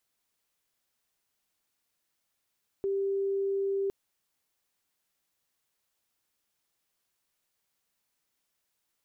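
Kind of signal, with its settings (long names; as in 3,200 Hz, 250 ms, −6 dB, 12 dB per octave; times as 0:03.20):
tone sine 393 Hz −26.5 dBFS 1.06 s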